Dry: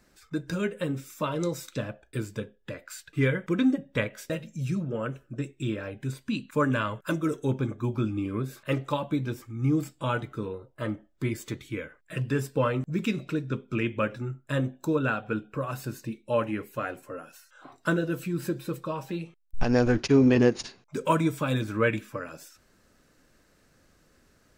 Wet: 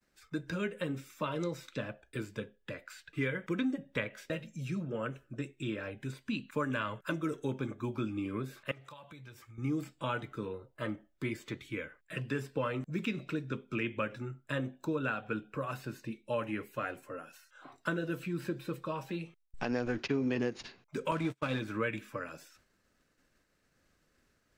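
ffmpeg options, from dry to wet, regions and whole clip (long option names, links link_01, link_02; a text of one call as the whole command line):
ffmpeg -i in.wav -filter_complex "[0:a]asettb=1/sr,asplit=3[link_01][link_02][link_03];[link_01]atrim=end=8.714[link_04];[link_02]atrim=start=8.71:end=9.58,asetpts=PTS-STARTPTS,afade=type=in:duration=0.004:curve=qsin,afade=type=out:start_time=0.866:duration=0.004:curve=qsin,equalizer=frequency=260:width=0.85:gain=-13,acompressor=threshold=-43dB:ratio=8:attack=3.2:release=140:knee=1:detection=peak,highpass=54[link_05];[link_03]atrim=start=9.576[link_06];[link_04][link_05]acrossfade=duration=0.004:curve1=hsin:curve2=qsin[link_07];[link_07][link_06]acrossfade=duration=0.004:curve1=qsin:curve2=hsin,asettb=1/sr,asplit=3[link_08][link_09][link_10];[link_08]atrim=end=21.114[link_11];[link_09]atrim=start=21.11:end=21.6,asetpts=PTS-STARTPTS,afade=type=in:duration=0.004:curve=qsin,afade=type=out:start_time=0.486:duration=0.004:curve=qsin,aeval=exprs='val(0)+0.5*0.0266*sgn(val(0))':channel_layout=same,agate=range=-40dB:threshold=-27dB:ratio=16:release=100:detection=peak,adynamicsmooth=sensitivity=2.5:basefreq=7700[link_12];[link_10]atrim=start=21.596[link_13];[link_11][link_12]acrossfade=duration=0.004:curve1=hsin:curve2=qsin[link_14];[link_14][link_13]acrossfade=duration=0.004:curve1=qsin:curve2=hsin,agate=range=-33dB:threshold=-56dB:ratio=3:detection=peak,equalizer=frequency=2300:width_type=o:width=1.7:gain=4,acrossover=split=150|4500[link_15][link_16][link_17];[link_15]acompressor=threshold=-42dB:ratio=4[link_18];[link_16]acompressor=threshold=-25dB:ratio=4[link_19];[link_17]acompressor=threshold=-54dB:ratio=4[link_20];[link_18][link_19][link_20]amix=inputs=3:normalize=0,volume=-5dB" out.wav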